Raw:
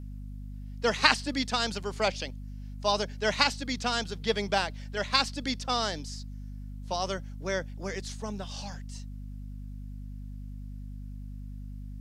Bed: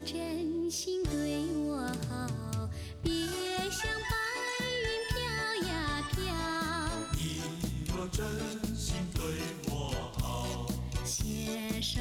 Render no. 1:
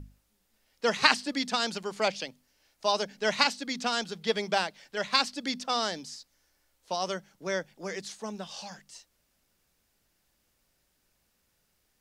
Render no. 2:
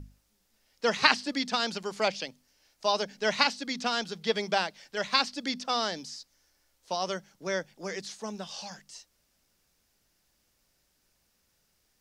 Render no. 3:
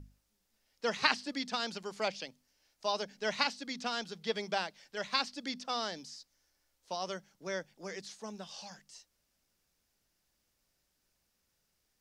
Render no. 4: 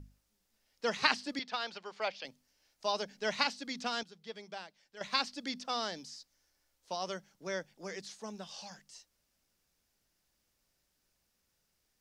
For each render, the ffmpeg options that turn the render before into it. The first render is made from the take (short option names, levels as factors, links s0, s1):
-af "bandreject=f=50:t=h:w=6,bandreject=f=100:t=h:w=6,bandreject=f=150:t=h:w=6,bandreject=f=200:t=h:w=6,bandreject=f=250:t=h:w=6"
-filter_complex "[0:a]acrossover=split=5100[s0][s1];[s1]acompressor=threshold=0.00447:ratio=4:attack=1:release=60[s2];[s0][s2]amix=inputs=2:normalize=0,equalizer=f=5500:t=o:w=0.77:g=4"
-af "volume=0.473"
-filter_complex "[0:a]asettb=1/sr,asplit=3[s0][s1][s2];[s0]atrim=end=1.394[s3];[s1]atrim=start=1.39:end=2.25,asetpts=PTS-STARTPTS,afade=t=in:d=0.004:c=qsin,afade=t=out:st=0.856:d=0.004:c=qsin,acrossover=split=450 4900:gain=0.224 1 0.0891[s4][s5][s6];[s4][s5][s6]amix=inputs=3:normalize=0[s7];[s2]atrim=start=2.246[s8];[s3][s7]acrossfade=d=0.004:c1=hsin:c2=qsin[s9];[s9][s8]acrossfade=d=0.004:c1=qsin:c2=hsin,asplit=3[s10][s11][s12];[s10]atrim=end=4.032[s13];[s11]atrim=start=4.028:end=5.012,asetpts=PTS-STARTPTS,volume=0.282[s14];[s12]atrim=start=5.008[s15];[s13][s14]acrossfade=d=0.004:c1=hsin:c2=hsin[s16];[s16][s15]acrossfade=d=0.004:c1=hsin:c2=hsin"